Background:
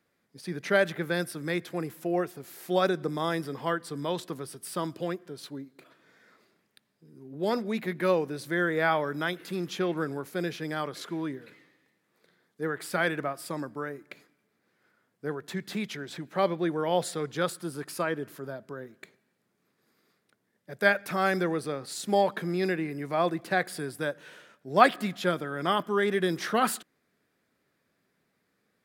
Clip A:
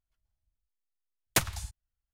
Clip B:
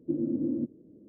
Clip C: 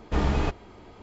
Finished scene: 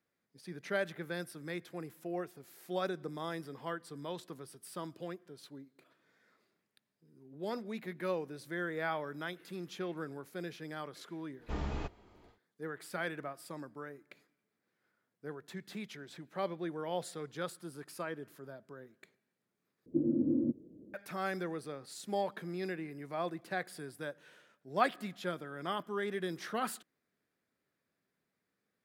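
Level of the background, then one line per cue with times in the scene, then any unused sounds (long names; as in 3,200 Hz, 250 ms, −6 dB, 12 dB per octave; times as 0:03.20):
background −10.5 dB
0:11.37: mix in C −13 dB, fades 0.10 s
0:19.86: overwrite with B −1 dB
not used: A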